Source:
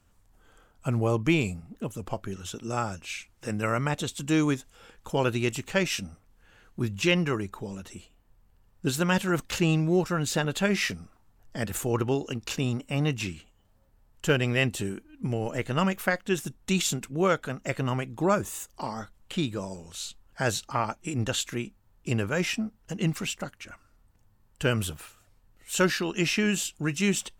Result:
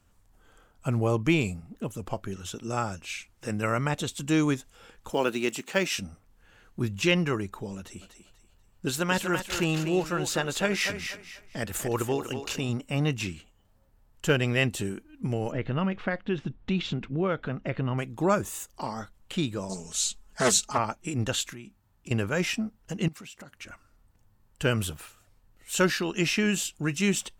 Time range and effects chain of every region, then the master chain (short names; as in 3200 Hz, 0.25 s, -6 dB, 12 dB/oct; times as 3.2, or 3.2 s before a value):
5.13–5.96 block floating point 7-bit + HPF 190 Hz 24 dB/oct
7.77–12.69 dynamic EQ 160 Hz, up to -5 dB, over -36 dBFS, Q 0.74 + thinning echo 0.243 s, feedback 32%, high-pass 350 Hz, level -7 dB
15.52–17.98 LPF 3700 Hz 24 dB/oct + low shelf 450 Hz +6 dB + compressor 2:1, threshold -27 dBFS
19.69–20.78 bell 7200 Hz +10 dB 1.1 oct + comb 4.7 ms, depth 91% + Doppler distortion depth 0.31 ms
21.52–22.11 bell 480 Hz -8 dB 0.36 oct + compressor 4:1, threshold -40 dBFS + HPF 44 Hz
23.08–23.56 HPF 61 Hz + compressor, threshold -42 dBFS
whole clip: dry